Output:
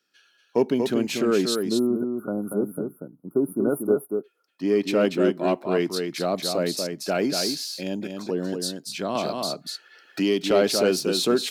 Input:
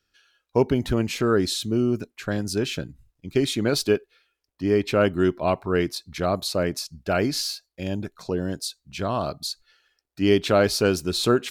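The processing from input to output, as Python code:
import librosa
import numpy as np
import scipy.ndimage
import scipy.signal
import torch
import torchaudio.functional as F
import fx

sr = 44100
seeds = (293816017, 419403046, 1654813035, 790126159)

p1 = scipy.signal.sosfilt(scipy.signal.butter(4, 180.0, 'highpass', fs=sr, output='sos'), x)
p2 = 10.0 ** (-20.0 / 20.0) * np.tanh(p1 / 10.0 ** (-20.0 / 20.0))
p3 = p1 + F.gain(torch.from_numpy(p2), -9.0).numpy()
p4 = fx.dynamic_eq(p3, sr, hz=1300.0, q=0.98, threshold_db=-37.0, ratio=4.0, max_db=-5)
p5 = fx.spec_erase(p4, sr, start_s=1.55, length_s=2.69, low_hz=1500.0, high_hz=9600.0)
p6 = p5 + fx.echo_single(p5, sr, ms=237, db=-5.5, dry=0)
p7 = fx.band_squash(p6, sr, depth_pct=70, at=(9.15, 10.51))
y = F.gain(torch.from_numpy(p7), -1.5).numpy()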